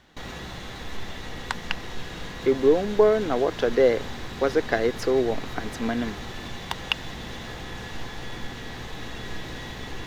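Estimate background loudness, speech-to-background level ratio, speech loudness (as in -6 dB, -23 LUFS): -36.5 LUFS, 12.0 dB, -24.5 LUFS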